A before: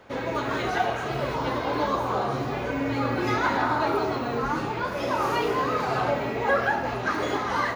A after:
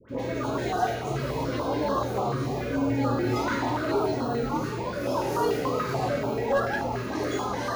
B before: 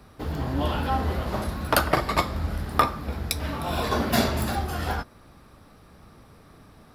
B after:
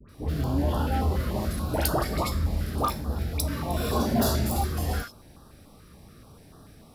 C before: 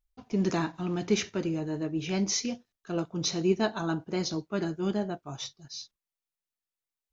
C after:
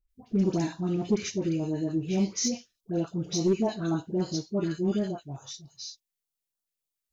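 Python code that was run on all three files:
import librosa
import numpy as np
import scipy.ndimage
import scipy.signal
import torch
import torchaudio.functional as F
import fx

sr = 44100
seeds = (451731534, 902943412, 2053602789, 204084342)

p1 = fx.dispersion(x, sr, late='highs', ms=91.0, hz=1200.0)
p2 = fx.dynamic_eq(p1, sr, hz=3000.0, q=1.1, threshold_db=-44.0, ratio=4.0, max_db=-6)
p3 = fx.hpss(p2, sr, part='harmonic', gain_db=6)
p4 = fx.high_shelf(p3, sr, hz=5700.0, db=5.0)
p5 = 10.0 ** (-16.5 / 20.0) * (np.abs((p4 / 10.0 ** (-16.5 / 20.0) + 3.0) % 4.0 - 2.0) - 1.0)
p6 = p4 + F.gain(torch.from_numpy(p5), -8.5).numpy()
p7 = fx.filter_held_notch(p6, sr, hz=6.9, low_hz=770.0, high_hz=2200.0)
y = F.gain(torch.from_numpy(p7), -5.5).numpy()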